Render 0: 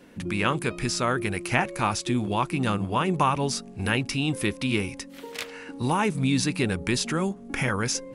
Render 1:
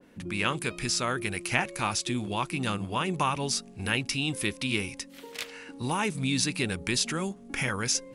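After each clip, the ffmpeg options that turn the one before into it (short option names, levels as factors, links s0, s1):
-af "adynamicequalizer=threshold=0.01:dfrequency=1900:dqfactor=0.7:tfrequency=1900:tqfactor=0.7:attack=5:release=100:ratio=0.375:range=3.5:mode=boostabove:tftype=highshelf,volume=0.531"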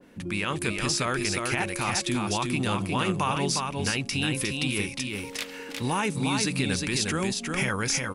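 -af "alimiter=limit=0.106:level=0:latency=1:release=36,aecho=1:1:358:0.631,volume=1.41"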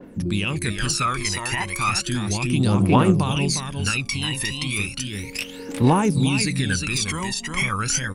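-af "aphaser=in_gain=1:out_gain=1:delay=1.1:decay=0.78:speed=0.34:type=triangular"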